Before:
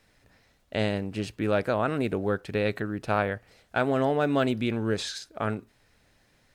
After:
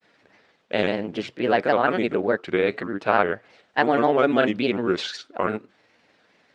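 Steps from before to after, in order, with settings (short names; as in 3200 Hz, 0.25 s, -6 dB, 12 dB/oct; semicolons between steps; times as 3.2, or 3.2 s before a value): grains, spray 26 ms, pitch spread up and down by 3 st; BPF 250–4100 Hz; gain +7.5 dB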